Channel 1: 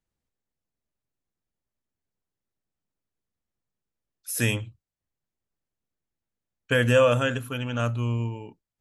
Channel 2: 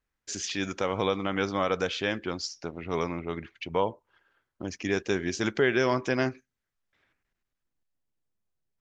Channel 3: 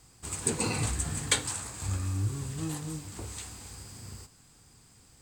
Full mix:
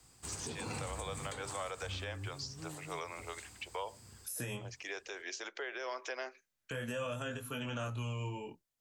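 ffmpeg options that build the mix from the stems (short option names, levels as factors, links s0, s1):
-filter_complex "[0:a]highshelf=f=3500:g=7.5,flanger=delay=19.5:depth=4.5:speed=0.55,volume=1.12[s0];[1:a]highpass=f=480:w=0.5412,highpass=f=480:w=1.3066,adynamicequalizer=threshold=0.00891:dfrequency=1600:dqfactor=0.7:tfrequency=1600:tqfactor=0.7:attack=5:release=100:ratio=0.375:range=3:mode=boostabove:tftype=highshelf,volume=0.501[s1];[2:a]volume=0.668,afade=t=out:st=1.65:d=0.53:silence=0.473151[s2];[s0][s1][s2]amix=inputs=3:normalize=0,lowshelf=f=320:g=-3.5,acrossover=split=180|510|1100[s3][s4][s5][s6];[s3]acompressor=threshold=0.0126:ratio=4[s7];[s4]acompressor=threshold=0.00631:ratio=4[s8];[s5]acompressor=threshold=0.0126:ratio=4[s9];[s6]acompressor=threshold=0.00891:ratio=4[s10];[s7][s8][s9][s10]amix=inputs=4:normalize=0,alimiter=level_in=1.88:limit=0.0631:level=0:latency=1:release=179,volume=0.531"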